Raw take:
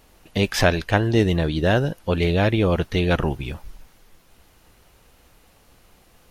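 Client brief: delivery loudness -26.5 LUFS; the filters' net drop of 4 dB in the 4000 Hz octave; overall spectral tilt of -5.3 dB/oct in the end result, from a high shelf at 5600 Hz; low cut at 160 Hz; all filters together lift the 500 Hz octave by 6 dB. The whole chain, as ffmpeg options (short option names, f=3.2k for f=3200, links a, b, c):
-af "highpass=160,equalizer=f=500:t=o:g=7.5,equalizer=f=4k:t=o:g=-3.5,highshelf=f=5.6k:g=-5.5,volume=-7.5dB"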